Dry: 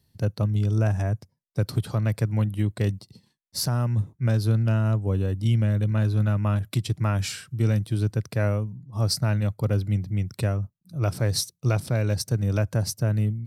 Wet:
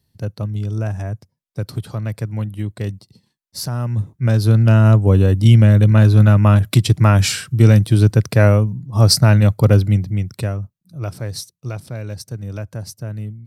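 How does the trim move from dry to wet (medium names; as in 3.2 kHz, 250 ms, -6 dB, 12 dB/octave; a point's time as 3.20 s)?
3.58 s 0 dB
4.86 s +12 dB
9.73 s +12 dB
10.29 s +4 dB
11.54 s -4.5 dB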